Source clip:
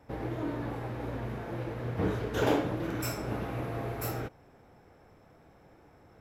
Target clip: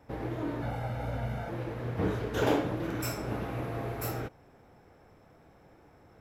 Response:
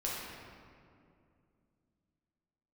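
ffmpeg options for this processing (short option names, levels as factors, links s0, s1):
-filter_complex "[0:a]asettb=1/sr,asplit=3[s0][s1][s2];[s0]atrim=end=0.624[s3];[s1]atrim=start=0.62:end=1.49,asetpts=PTS-STARTPTS,afade=t=in:d=0.004:c=qsin,afade=t=out:st=0.866:d=0.004:c=qsin,aecho=1:1:1.4:0.77,atrim=end_sample=38367[s4];[s2]atrim=start=1.486[s5];[s3][s4]acrossfade=d=0.004:c1=hsin:c2=qsin[s6];[s6][s5]acrossfade=d=0.004:c1=qsin:c2=hsin"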